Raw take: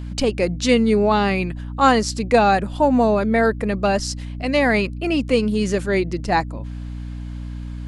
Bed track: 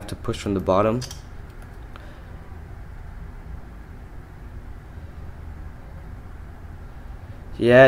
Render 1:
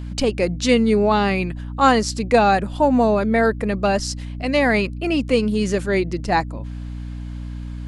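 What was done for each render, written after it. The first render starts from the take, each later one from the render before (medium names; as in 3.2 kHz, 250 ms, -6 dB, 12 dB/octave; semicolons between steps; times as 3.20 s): no audible change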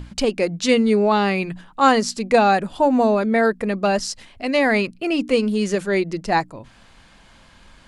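hum notches 60/120/180/240/300 Hz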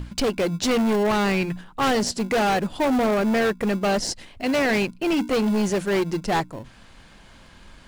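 in parallel at -11 dB: sample-and-hold 36×; on the sum: hard clipper -18.5 dBFS, distortion -8 dB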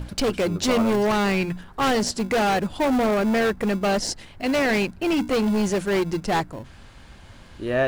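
add bed track -10.5 dB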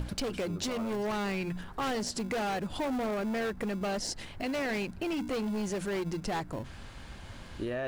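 peak limiter -23.5 dBFS, peak gain reduction 11 dB; compression, threshold -31 dBFS, peak gain reduction 6 dB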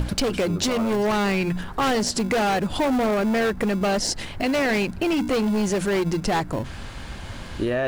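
trim +10.5 dB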